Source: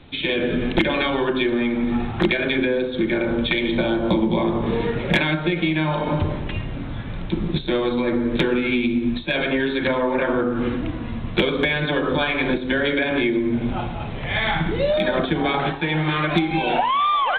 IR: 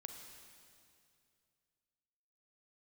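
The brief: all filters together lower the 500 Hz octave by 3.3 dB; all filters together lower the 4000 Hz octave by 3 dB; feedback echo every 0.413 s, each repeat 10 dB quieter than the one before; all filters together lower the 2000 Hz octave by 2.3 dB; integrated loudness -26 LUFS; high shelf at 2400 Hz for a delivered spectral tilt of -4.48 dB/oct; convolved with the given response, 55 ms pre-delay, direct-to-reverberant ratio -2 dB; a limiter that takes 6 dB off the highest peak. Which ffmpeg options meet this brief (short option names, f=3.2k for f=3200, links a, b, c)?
-filter_complex "[0:a]equalizer=f=500:t=o:g=-4.5,equalizer=f=2k:t=o:g=-3.5,highshelf=f=2.4k:g=5.5,equalizer=f=4k:t=o:g=-7,alimiter=limit=-14.5dB:level=0:latency=1,aecho=1:1:413|826|1239|1652:0.316|0.101|0.0324|0.0104,asplit=2[a][b];[1:a]atrim=start_sample=2205,adelay=55[c];[b][c]afir=irnorm=-1:irlink=0,volume=6.5dB[d];[a][d]amix=inputs=2:normalize=0,volume=-6.5dB"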